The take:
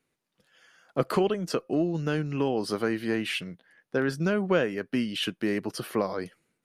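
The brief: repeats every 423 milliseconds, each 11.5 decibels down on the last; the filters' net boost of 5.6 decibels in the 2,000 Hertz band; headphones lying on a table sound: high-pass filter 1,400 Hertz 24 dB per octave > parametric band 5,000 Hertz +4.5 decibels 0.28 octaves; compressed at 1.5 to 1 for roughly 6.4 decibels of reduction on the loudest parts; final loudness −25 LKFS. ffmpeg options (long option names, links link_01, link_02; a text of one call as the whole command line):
ffmpeg -i in.wav -af "equalizer=frequency=2000:width_type=o:gain=8.5,acompressor=threshold=-36dB:ratio=1.5,highpass=frequency=1400:width=0.5412,highpass=frequency=1400:width=1.3066,equalizer=frequency=5000:width_type=o:width=0.28:gain=4.5,aecho=1:1:423|846|1269:0.266|0.0718|0.0194,volume=11.5dB" out.wav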